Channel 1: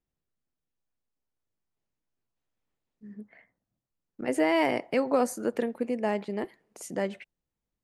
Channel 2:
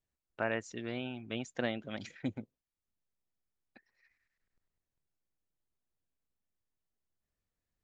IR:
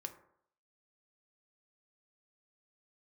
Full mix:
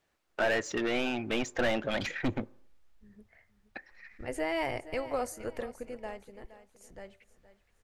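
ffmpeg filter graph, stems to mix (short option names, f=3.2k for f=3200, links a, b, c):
-filter_complex "[0:a]asubboost=boost=10.5:cutoff=66,volume=-6.5dB,afade=t=out:st=5.66:d=0.64:silence=0.334965,asplit=3[a][b][c];[b]volume=-12.5dB[d];[c]volume=-14dB[e];[1:a]asplit=2[f][g];[g]highpass=f=720:p=1,volume=29dB,asoftclip=type=tanh:threshold=-17.5dB[h];[f][h]amix=inputs=2:normalize=0,lowpass=f=1.6k:p=1,volume=-6dB,volume=-2dB,asplit=2[i][j];[j]volume=-8.5dB[k];[2:a]atrim=start_sample=2205[l];[d][k]amix=inputs=2:normalize=0[m];[m][l]afir=irnorm=-1:irlink=0[n];[e]aecho=0:1:469|938|1407|1876|2345:1|0.32|0.102|0.0328|0.0105[o];[a][i][n][o]amix=inputs=4:normalize=0,bandreject=f=1k:w=23,asubboost=boost=6:cutoff=90"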